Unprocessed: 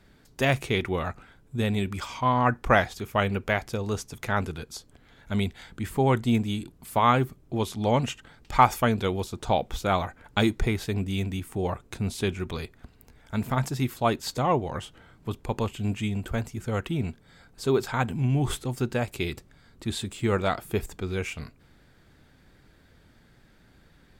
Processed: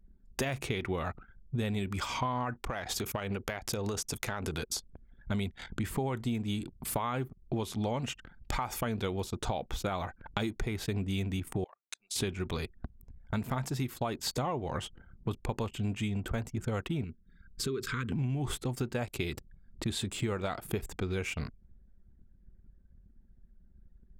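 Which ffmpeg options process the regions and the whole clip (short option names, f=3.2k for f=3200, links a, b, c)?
-filter_complex "[0:a]asettb=1/sr,asplit=3[a][b][c];[a]atrim=end=2.624[d];[b]atrim=start=2.62:end=4.76,asetpts=PTS-STARTPTS,afade=t=in:d=0.004:c=qsin,afade=t=out:st=2.136:d=0.004:c=qsin,bass=f=250:g=-4,treble=f=4k:g=5,acompressor=threshold=-32dB:ratio=16:attack=3.2:release=140:knee=1:detection=peak[e];[c]atrim=start=4.756[f];[d][e]acrossfade=d=0.004:c1=hsin:c2=qsin[g];[g][f]acrossfade=d=0.004:c1=qsin:c2=hsin,asettb=1/sr,asplit=3[h][i][j];[h]atrim=end=11.644[k];[i]atrim=start=11.64:end=12.16,asetpts=PTS-STARTPTS,afade=t=in:d=0.004:c=qsin,afade=t=out:st=0.516:d=0.004:c=qsin,highpass=350,lowpass=7.5k,aderivative[l];[j]atrim=start=12.156[m];[k][l]acrossfade=d=0.004:c1=hsin:c2=qsin[n];[n][m]acrossfade=d=0.004:c1=qsin:c2=hsin,asettb=1/sr,asplit=3[o][p][q];[o]atrim=end=17.044[r];[p]atrim=start=17.04:end=18.12,asetpts=PTS-STARTPTS,afade=t=in:d=0.004:c=qsin,afade=t=out:st=1.076:d=0.004:c=qsin,acompressor=threshold=-37dB:ratio=2:attack=3.2:release=140:knee=1:detection=peak,asuperstop=centerf=720:order=8:qfactor=1.1[s];[q]atrim=start=18.116[t];[r][s]acrossfade=d=0.004:c1=hsin:c2=qsin[u];[u][t]acrossfade=d=0.004:c1=qsin:c2=hsin,anlmdn=0.0398,alimiter=limit=-16dB:level=0:latency=1:release=120,acompressor=threshold=-38dB:ratio=6,volume=7dB"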